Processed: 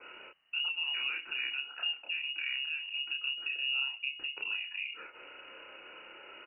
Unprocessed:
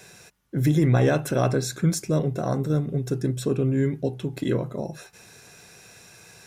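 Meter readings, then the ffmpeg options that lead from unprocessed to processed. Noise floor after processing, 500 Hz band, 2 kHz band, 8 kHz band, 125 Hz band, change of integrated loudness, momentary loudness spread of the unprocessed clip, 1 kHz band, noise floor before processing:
−54 dBFS, −32.0 dB, +4.0 dB, below −40 dB, below −40 dB, −9.0 dB, 10 LU, −17.0 dB, −50 dBFS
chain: -filter_complex "[0:a]adynamicequalizer=threshold=0.02:dfrequency=180:dqfactor=0.8:tfrequency=180:tqfactor=0.8:attack=5:release=100:ratio=0.375:range=2:mode=cutabove:tftype=bell,acompressor=threshold=-36dB:ratio=6,asplit=2[link_01][link_02];[link_02]adelay=30,volume=-2dB[link_03];[link_01][link_03]amix=inputs=2:normalize=0,lowpass=frequency=2600:width_type=q:width=0.5098,lowpass=frequency=2600:width_type=q:width=0.6013,lowpass=frequency=2600:width_type=q:width=0.9,lowpass=frequency=2600:width_type=q:width=2.563,afreqshift=-3000" -ar 32000 -c:a ac3 -b:a 64k

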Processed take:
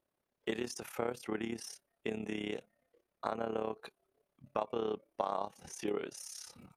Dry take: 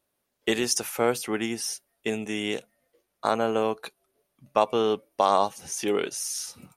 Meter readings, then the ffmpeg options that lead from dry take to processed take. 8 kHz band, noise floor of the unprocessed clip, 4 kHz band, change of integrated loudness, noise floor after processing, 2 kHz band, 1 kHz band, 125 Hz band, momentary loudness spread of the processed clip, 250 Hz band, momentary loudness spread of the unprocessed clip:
−17.0 dB, −78 dBFS, −15.5 dB, −12.5 dB, below −85 dBFS, −12.5 dB, −13.5 dB, −9.0 dB, 8 LU, −10.0 dB, 9 LU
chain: -af "tremolo=f=34:d=0.75,acompressor=threshold=-33dB:ratio=2.5,highshelf=frequency=3400:gain=-11.5,volume=-1dB"

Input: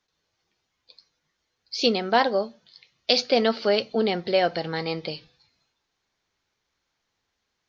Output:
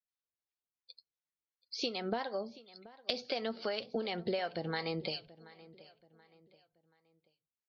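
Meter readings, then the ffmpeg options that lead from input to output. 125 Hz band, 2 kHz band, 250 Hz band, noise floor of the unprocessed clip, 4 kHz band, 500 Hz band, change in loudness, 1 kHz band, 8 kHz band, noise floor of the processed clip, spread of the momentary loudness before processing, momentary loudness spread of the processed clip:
−8.5 dB, −12.5 dB, −12.5 dB, −79 dBFS, −12.5 dB, −14.0 dB, −13.5 dB, −15.0 dB, can't be measured, below −85 dBFS, 13 LU, 20 LU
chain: -filter_complex "[0:a]afftdn=noise_reduction=27:noise_floor=-47,acompressor=threshold=-30dB:ratio=10,acrossover=split=600[link_01][link_02];[link_01]aeval=exprs='val(0)*(1-0.7/2+0.7/2*cos(2*PI*2.8*n/s))':channel_layout=same[link_03];[link_02]aeval=exprs='val(0)*(1-0.7/2-0.7/2*cos(2*PI*2.8*n/s))':channel_layout=same[link_04];[link_03][link_04]amix=inputs=2:normalize=0,asplit=2[link_05][link_06];[link_06]adelay=730,lowpass=frequency=5000:poles=1,volume=-19.5dB,asplit=2[link_07][link_08];[link_08]adelay=730,lowpass=frequency=5000:poles=1,volume=0.39,asplit=2[link_09][link_10];[link_10]adelay=730,lowpass=frequency=5000:poles=1,volume=0.39[link_11];[link_07][link_09][link_11]amix=inputs=3:normalize=0[link_12];[link_05][link_12]amix=inputs=2:normalize=0,volume=1.5dB"

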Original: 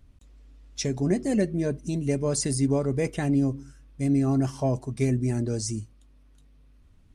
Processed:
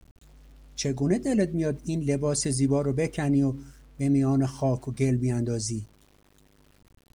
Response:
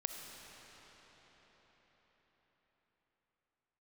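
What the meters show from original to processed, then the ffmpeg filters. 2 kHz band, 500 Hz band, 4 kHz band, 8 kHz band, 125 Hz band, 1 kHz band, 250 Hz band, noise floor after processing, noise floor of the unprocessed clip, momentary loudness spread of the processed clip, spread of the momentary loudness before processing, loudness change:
0.0 dB, 0.0 dB, 0.0 dB, 0.0 dB, 0.0 dB, 0.0 dB, 0.0 dB, −62 dBFS, −56 dBFS, 6 LU, 6 LU, 0.0 dB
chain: -af "aeval=exprs='val(0)*gte(abs(val(0)),0.00237)':channel_layout=same"

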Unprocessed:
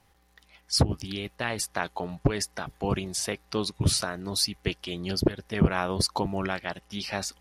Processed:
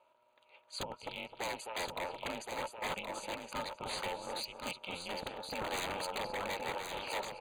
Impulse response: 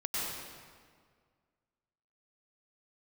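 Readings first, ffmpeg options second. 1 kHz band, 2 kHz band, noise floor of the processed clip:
−4.5 dB, −6.5 dB, −69 dBFS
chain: -filter_complex "[0:a]asplit=3[link_01][link_02][link_03];[link_01]bandpass=frequency=730:width_type=q:width=8,volume=0dB[link_04];[link_02]bandpass=frequency=1090:width_type=q:width=8,volume=-6dB[link_05];[link_03]bandpass=frequency=2440:width_type=q:width=8,volume=-9dB[link_06];[link_04][link_05][link_06]amix=inputs=3:normalize=0,equalizer=frequency=120:width=1.4:gain=-13,asplit=2[link_07][link_08];[link_08]adelay=259,lowpass=frequency=4900:poles=1,volume=-11dB,asplit=2[link_09][link_10];[link_10]adelay=259,lowpass=frequency=4900:poles=1,volume=0.22,asplit=2[link_11][link_12];[link_12]adelay=259,lowpass=frequency=4900:poles=1,volume=0.22[link_13];[link_09][link_11][link_13]amix=inputs=3:normalize=0[link_14];[link_07][link_14]amix=inputs=2:normalize=0,aeval=exprs='0.0106*(abs(mod(val(0)/0.0106+3,4)-2)-1)':channel_layout=same,aeval=exprs='val(0)*sin(2*PI*170*n/s)':channel_layout=same,asuperstop=centerf=5400:order=12:qfactor=4.2,highshelf=frequency=6200:gain=7.5,asplit=2[link_15][link_16];[link_16]aecho=0:1:1071:0.531[link_17];[link_15][link_17]amix=inputs=2:normalize=0,volume=10dB"

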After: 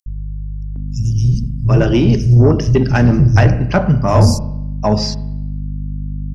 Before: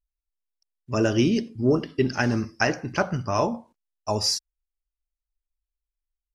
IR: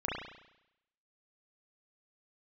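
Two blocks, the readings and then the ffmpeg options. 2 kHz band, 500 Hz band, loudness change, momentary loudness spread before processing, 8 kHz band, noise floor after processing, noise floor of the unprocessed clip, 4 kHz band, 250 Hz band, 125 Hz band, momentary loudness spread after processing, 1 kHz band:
+4.5 dB, +8.5 dB, +11.0 dB, 7 LU, +3.0 dB, −24 dBFS, below −85 dBFS, +3.0 dB, +10.0 dB, +19.5 dB, 15 LU, +8.0 dB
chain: -filter_complex "[0:a]asubboost=boost=11:cutoff=110,acrossover=split=800|3000[link_01][link_02][link_03];[link_01]dynaudnorm=framelen=450:gausssize=5:maxgain=11.5dB[link_04];[link_04][link_02][link_03]amix=inputs=3:normalize=0,aeval=exprs='val(0)+0.0398*(sin(2*PI*50*n/s)+sin(2*PI*2*50*n/s)/2+sin(2*PI*3*50*n/s)/3+sin(2*PI*4*50*n/s)/4+sin(2*PI*5*50*n/s)/5)':channel_layout=same,acrossover=split=150|5300[link_05][link_06][link_07];[link_05]adelay=60[link_08];[link_06]adelay=760[link_09];[link_08][link_09][link_07]amix=inputs=3:normalize=0,asplit=2[link_10][link_11];[1:a]atrim=start_sample=2205,lowshelf=frequency=190:gain=9.5[link_12];[link_11][link_12]afir=irnorm=-1:irlink=0,volume=-18dB[link_13];[link_10][link_13]amix=inputs=2:normalize=0,acontrast=73,volume=-1dB"

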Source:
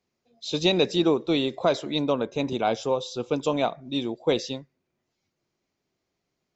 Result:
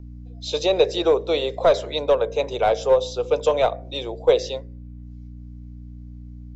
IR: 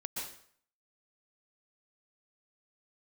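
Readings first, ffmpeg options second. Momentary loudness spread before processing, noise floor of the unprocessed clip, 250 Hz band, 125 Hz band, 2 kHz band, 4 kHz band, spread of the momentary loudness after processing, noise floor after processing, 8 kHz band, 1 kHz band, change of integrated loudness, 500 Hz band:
8 LU, −81 dBFS, −6.5 dB, 0.0 dB, +1.5 dB, +0.5 dB, 21 LU, −39 dBFS, can't be measured, +4.5 dB, +4.5 dB, +7.0 dB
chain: -filter_complex "[0:a]lowshelf=frequency=340:width_type=q:width=3:gain=-13,aeval=exprs='val(0)+0.0112*(sin(2*PI*60*n/s)+sin(2*PI*2*60*n/s)/2+sin(2*PI*3*60*n/s)/3+sin(2*PI*4*60*n/s)/4+sin(2*PI*5*60*n/s)/5)':channel_layout=same,acrossover=split=600|1000[link_01][link_02][link_03];[link_01]bandreject=frequency=45.66:width_type=h:width=4,bandreject=frequency=91.32:width_type=h:width=4,bandreject=frequency=136.98:width_type=h:width=4,bandreject=frequency=182.64:width_type=h:width=4,bandreject=frequency=228.3:width_type=h:width=4,bandreject=frequency=273.96:width_type=h:width=4,bandreject=frequency=319.62:width_type=h:width=4,bandreject=frequency=365.28:width_type=h:width=4,bandreject=frequency=410.94:width_type=h:width=4,bandreject=frequency=456.6:width_type=h:width=4,bandreject=frequency=502.26:width_type=h:width=4,bandreject=frequency=547.92:width_type=h:width=4,bandreject=frequency=593.58:width_type=h:width=4,bandreject=frequency=639.24:width_type=h:width=4,bandreject=frequency=684.9:width_type=h:width=4,bandreject=frequency=730.56:width_type=h:width=4,bandreject=frequency=776.22:width_type=h:width=4,bandreject=frequency=821.88:width_type=h:width=4,bandreject=frequency=867.54:width_type=h:width=4,bandreject=frequency=913.2:width_type=h:width=4,bandreject=frequency=958.86:width_type=h:width=4,bandreject=frequency=1004.52:width_type=h:width=4,bandreject=frequency=1050.18:width_type=h:width=4,bandreject=frequency=1095.84:width_type=h:width=4,bandreject=frequency=1141.5:width_type=h:width=4,bandreject=frequency=1187.16:width_type=h:width=4,bandreject=frequency=1232.82:width_type=h:width=4,bandreject=frequency=1278.48:width_type=h:width=4,bandreject=frequency=1324.14:width_type=h:width=4,bandreject=frequency=1369.8:width_type=h:width=4,bandreject=frequency=1415.46:width_type=h:width=4,bandreject=frequency=1461.12:width_type=h:width=4,bandreject=frequency=1506.78:width_type=h:width=4,bandreject=frequency=1552.44:width_type=h:width=4[link_04];[link_02]aeval=exprs='clip(val(0),-1,0.0501)':channel_layout=same[link_05];[link_03]alimiter=limit=-20.5dB:level=0:latency=1:release=201[link_06];[link_04][link_05][link_06]amix=inputs=3:normalize=0,volume=2.5dB"

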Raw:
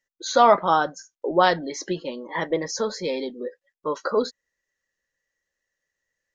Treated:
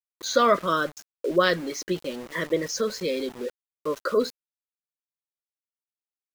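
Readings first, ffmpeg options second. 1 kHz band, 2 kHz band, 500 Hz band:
−6.5 dB, 0.0 dB, −1.5 dB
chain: -af "asuperstop=centerf=820:order=4:qfactor=1.7,aeval=exprs='val(0)*gte(abs(val(0)),0.0133)':channel_layout=same"

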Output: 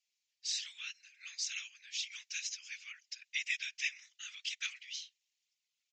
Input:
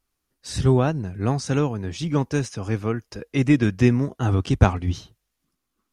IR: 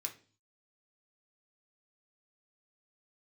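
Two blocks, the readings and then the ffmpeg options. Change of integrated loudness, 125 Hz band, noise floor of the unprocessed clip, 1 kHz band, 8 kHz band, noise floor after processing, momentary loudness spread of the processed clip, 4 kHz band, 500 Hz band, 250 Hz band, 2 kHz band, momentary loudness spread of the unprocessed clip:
−17.0 dB, below −40 dB, −79 dBFS, below −35 dB, −2.5 dB, below −85 dBFS, 11 LU, −1.0 dB, below −40 dB, below −40 dB, −6.5 dB, 10 LU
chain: -af "asuperpass=centerf=5700:order=12:qfactor=0.56,aresample=16000,aresample=44100,afftfilt=real='hypot(re,im)*cos(2*PI*random(0))':imag='hypot(re,im)*sin(2*PI*random(1))':win_size=512:overlap=0.75,volume=5dB"

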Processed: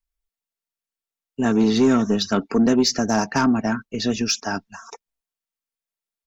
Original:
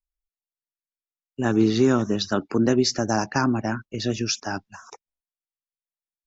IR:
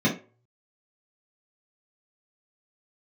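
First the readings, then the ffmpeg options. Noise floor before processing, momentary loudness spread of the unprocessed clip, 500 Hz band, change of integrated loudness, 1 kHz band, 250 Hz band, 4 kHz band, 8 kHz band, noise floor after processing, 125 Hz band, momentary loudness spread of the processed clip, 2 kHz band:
below −85 dBFS, 9 LU, +1.0 dB, +3.0 dB, +2.5 dB, +3.5 dB, +3.0 dB, can't be measured, below −85 dBFS, −2.0 dB, 8 LU, +2.0 dB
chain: -af "aecho=1:1:4.4:0.49,asoftclip=type=tanh:threshold=-12dB,volume=3dB"

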